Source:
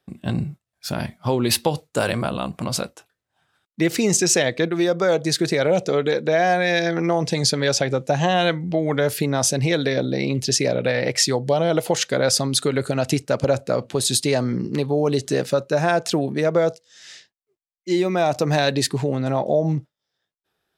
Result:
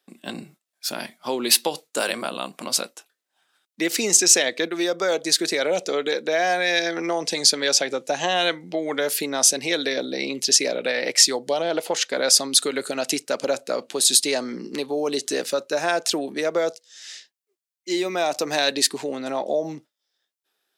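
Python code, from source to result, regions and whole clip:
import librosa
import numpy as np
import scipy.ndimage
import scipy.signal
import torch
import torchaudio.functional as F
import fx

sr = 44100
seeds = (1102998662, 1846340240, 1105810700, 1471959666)

y = fx.chain(x, sr, fx.high_shelf(hz=5800.0, db=-9.5),
    fx.doppler_dist(depth_ms=0.13), at=(11.62, 12.17))
y = scipy.signal.sosfilt(scipy.signal.butter(4, 240.0, 'highpass', fs=sr, output='sos'), y)
y = fx.high_shelf(y, sr, hz=2100.0, db=10.0)
y = y * librosa.db_to_amplitude(-4.5)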